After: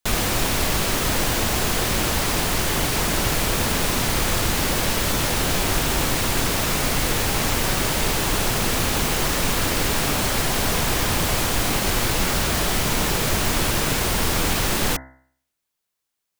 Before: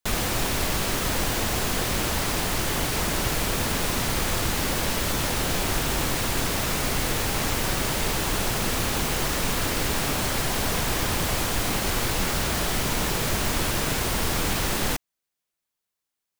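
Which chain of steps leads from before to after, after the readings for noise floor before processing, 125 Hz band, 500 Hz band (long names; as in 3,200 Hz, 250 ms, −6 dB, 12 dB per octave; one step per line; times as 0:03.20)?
−84 dBFS, +3.5 dB, +3.5 dB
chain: hum removal 65.19 Hz, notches 32
level +4 dB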